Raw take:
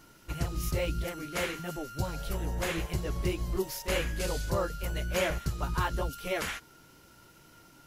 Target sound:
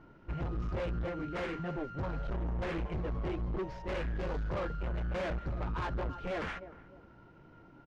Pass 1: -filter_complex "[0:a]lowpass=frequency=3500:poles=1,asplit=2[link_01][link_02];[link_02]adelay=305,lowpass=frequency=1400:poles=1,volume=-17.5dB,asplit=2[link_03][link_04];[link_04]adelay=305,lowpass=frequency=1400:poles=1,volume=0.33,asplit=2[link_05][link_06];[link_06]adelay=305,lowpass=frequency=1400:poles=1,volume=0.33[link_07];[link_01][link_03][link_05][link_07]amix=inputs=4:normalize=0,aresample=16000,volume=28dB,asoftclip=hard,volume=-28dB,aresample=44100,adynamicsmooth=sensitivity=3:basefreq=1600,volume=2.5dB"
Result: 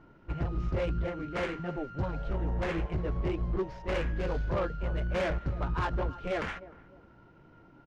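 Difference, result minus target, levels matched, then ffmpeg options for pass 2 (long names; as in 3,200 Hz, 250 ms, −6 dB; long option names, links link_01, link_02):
gain into a clipping stage and back: distortion −6 dB
-filter_complex "[0:a]lowpass=frequency=3500:poles=1,asplit=2[link_01][link_02];[link_02]adelay=305,lowpass=frequency=1400:poles=1,volume=-17.5dB,asplit=2[link_03][link_04];[link_04]adelay=305,lowpass=frequency=1400:poles=1,volume=0.33,asplit=2[link_05][link_06];[link_06]adelay=305,lowpass=frequency=1400:poles=1,volume=0.33[link_07];[link_01][link_03][link_05][link_07]amix=inputs=4:normalize=0,aresample=16000,volume=34.5dB,asoftclip=hard,volume=-34.5dB,aresample=44100,adynamicsmooth=sensitivity=3:basefreq=1600,volume=2.5dB"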